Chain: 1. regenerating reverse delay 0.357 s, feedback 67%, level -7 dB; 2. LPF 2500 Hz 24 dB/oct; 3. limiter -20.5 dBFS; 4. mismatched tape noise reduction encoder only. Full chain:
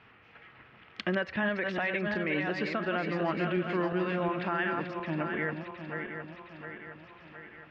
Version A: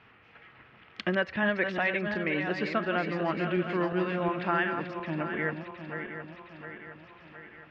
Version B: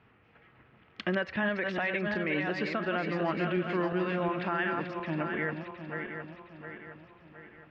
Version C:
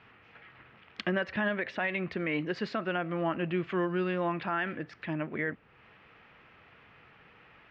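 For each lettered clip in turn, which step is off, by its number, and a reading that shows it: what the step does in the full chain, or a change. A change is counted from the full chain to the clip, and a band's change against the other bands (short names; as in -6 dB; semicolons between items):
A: 3, crest factor change +2.5 dB; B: 4, crest factor change -2.5 dB; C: 1, momentary loudness spread change -10 LU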